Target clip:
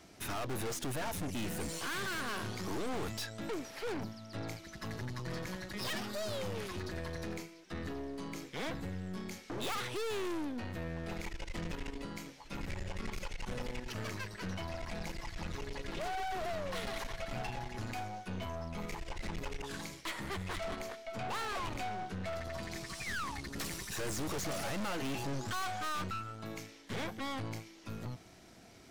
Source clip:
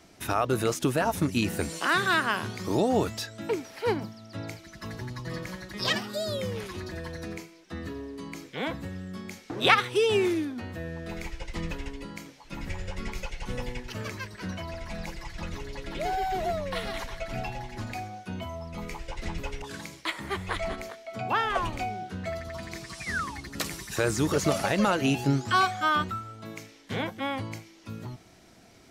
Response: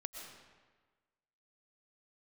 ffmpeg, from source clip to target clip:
-af "aeval=exprs='(tanh(70.8*val(0)+0.6)-tanh(0.6))/70.8':c=same,volume=1.12"

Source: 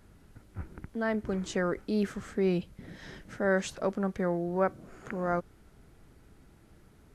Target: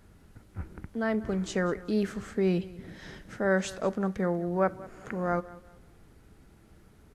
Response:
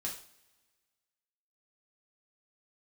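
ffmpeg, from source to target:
-filter_complex "[0:a]aecho=1:1:191|382|573:0.106|0.0328|0.0102,asplit=2[s0][s1];[1:a]atrim=start_sample=2205,asetrate=48510,aresample=44100[s2];[s1][s2]afir=irnorm=-1:irlink=0,volume=0.211[s3];[s0][s3]amix=inputs=2:normalize=0"

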